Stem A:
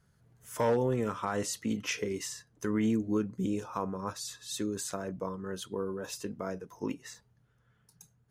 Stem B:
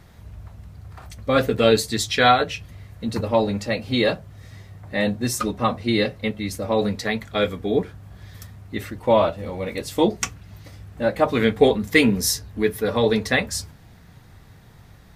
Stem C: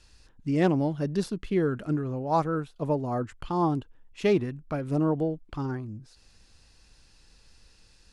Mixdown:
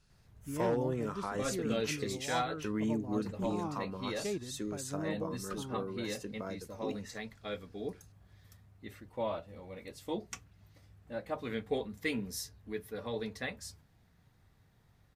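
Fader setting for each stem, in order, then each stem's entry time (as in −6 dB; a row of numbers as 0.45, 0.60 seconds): −5.0, −18.5, −14.0 decibels; 0.00, 0.10, 0.00 seconds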